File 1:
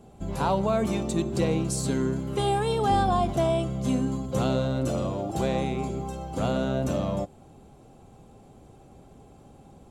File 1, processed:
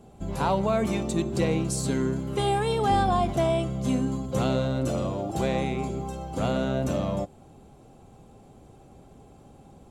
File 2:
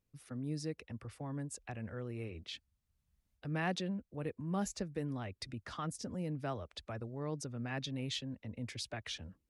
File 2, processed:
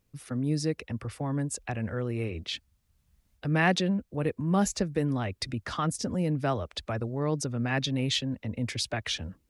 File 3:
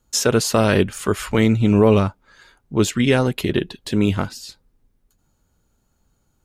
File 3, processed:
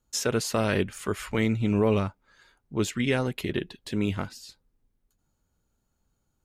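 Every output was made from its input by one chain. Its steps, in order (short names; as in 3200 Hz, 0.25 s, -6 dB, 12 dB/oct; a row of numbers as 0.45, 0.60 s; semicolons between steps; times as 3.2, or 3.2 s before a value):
dynamic EQ 2100 Hz, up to +4 dB, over -45 dBFS, Q 2.4; normalise peaks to -12 dBFS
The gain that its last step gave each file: 0.0, +11.0, -9.0 dB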